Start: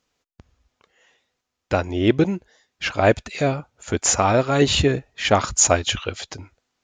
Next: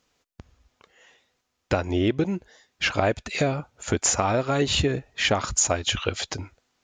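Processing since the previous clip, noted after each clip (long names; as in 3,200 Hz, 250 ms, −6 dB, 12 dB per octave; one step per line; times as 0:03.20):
downward compressor 6 to 1, threshold −23 dBFS, peak gain reduction 12 dB
level +3.5 dB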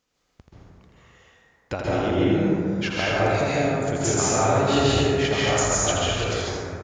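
single-tap delay 82 ms −5.5 dB
dense smooth reverb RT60 2.4 s, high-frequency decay 0.35×, pre-delay 120 ms, DRR −7.5 dB
level −6.5 dB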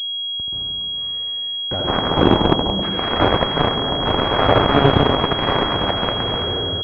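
harmonic generator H 7 −10 dB, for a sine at −8 dBFS
switching amplifier with a slow clock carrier 3,300 Hz
level +6.5 dB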